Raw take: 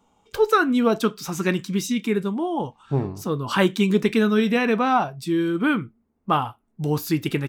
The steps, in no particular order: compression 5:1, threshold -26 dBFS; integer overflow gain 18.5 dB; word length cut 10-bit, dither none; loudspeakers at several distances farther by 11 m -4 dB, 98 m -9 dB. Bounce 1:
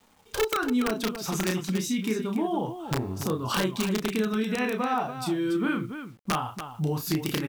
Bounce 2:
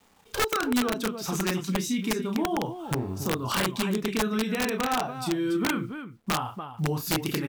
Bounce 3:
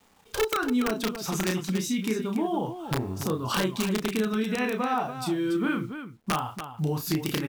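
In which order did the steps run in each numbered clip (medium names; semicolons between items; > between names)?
compression > integer overflow > loudspeakers at several distances > word length cut; word length cut > compression > loudspeakers at several distances > integer overflow; compression > word length cut > integer overflow > loudspeakers at several distances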